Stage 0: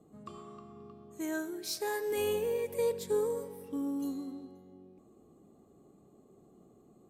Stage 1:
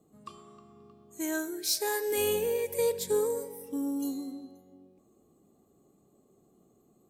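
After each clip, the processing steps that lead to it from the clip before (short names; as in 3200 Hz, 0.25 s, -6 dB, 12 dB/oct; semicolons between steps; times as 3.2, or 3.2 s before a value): spectral noise reduction 7 dB; high shelf 3800 Hz +8.5 dB; gain +2.5 dB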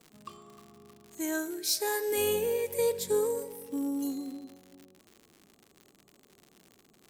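crackle 130/s -41 dBFS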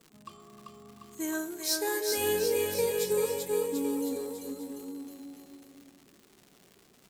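bouncing-ball echo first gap 0.39 s, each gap 0.9×, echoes 5; flange 0.81 Hz, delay 0.6 ms, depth 1.4 ms, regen -74%; gain +3.5 dB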